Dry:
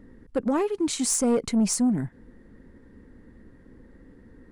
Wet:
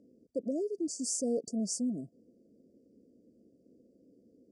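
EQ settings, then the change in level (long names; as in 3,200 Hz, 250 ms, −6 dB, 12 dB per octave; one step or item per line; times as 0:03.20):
high-pass filter 240 Hz 12 dB per octave
linear-phase brick-wall band-stop 710–4,500 Hz
low-pass filter 8,800 Hz 24 dB per octave
−7.5 dB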